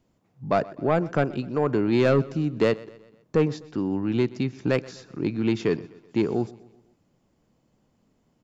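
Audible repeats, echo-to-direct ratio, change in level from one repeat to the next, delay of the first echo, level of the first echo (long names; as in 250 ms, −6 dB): 3, −19.5 dB, −6.0 dB, 126 ms, −20.5 dB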